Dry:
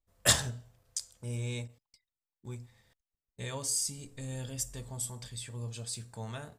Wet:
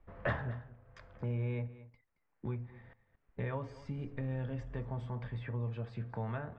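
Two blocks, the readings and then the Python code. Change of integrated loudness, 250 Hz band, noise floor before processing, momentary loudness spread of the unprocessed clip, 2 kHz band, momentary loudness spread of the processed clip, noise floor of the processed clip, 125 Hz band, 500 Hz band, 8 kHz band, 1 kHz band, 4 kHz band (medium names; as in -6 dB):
-5.5 dB, +2.5 dB, under -85 dBFS, 18 LU, -4.0 dB, 14 LU, -79 dBFS, +2.0 dB, +1.0 dB, under -40 dB, -0.5 dB, under -20 dB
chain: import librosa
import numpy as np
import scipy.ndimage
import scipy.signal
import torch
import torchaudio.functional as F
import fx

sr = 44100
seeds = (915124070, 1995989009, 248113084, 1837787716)

p1 = scipy.signal.sosfilt(scipy.signal.butter(4, 2000.0, 'lowpass', fs=sr, output='sos'), x)
p2 = p1 + fx.echo_single(p1, sr, ms=223, db=-21.0, dry=0)
p3 = fx.band_squash(p2, sr, depth_pct=70)
y = F.gain(torch.from_numpy(p3), 2.5).numpy()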